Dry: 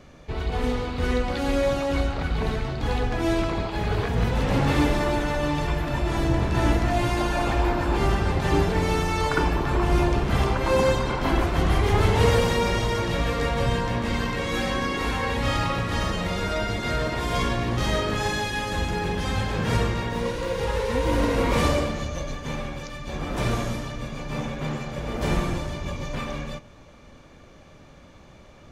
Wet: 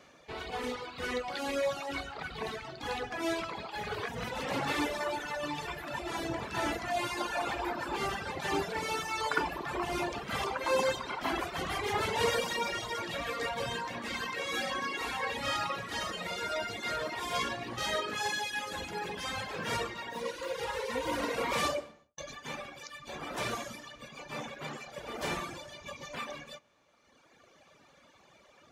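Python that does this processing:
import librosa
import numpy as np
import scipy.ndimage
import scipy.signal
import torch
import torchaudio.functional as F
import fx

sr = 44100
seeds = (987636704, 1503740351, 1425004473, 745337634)

y = fx.studio_fade_out(x, sr, start_s=21.67, length_s=0.51)
y = fx.dereverb_blind(y, sr, rt60_s=2.0)
y = fx.highpass(y, sr, hz=680.0, slope=6)
y = F.gain(torch.from_numpy(y), -2.0).numpy()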